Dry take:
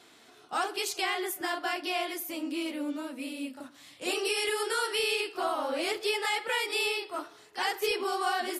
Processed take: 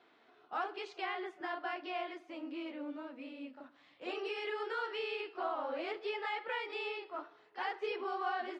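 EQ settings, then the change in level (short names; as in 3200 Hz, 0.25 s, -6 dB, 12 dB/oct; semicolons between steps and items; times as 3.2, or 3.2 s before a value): HPF 600 Hz 6 dB/oct; air absorption 72 m; tape spacing loss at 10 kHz 34 dB; -1.0 dB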